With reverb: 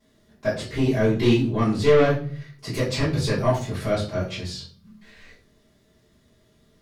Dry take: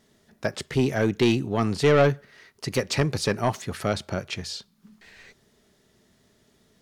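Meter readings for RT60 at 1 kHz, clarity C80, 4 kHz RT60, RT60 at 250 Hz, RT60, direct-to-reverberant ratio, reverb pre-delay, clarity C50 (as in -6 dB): 0.40 s, 11.5 dB, 0.35 s, 0.70 s, 0.45 s, -14.0 dB, 3 ms, 7.0 dB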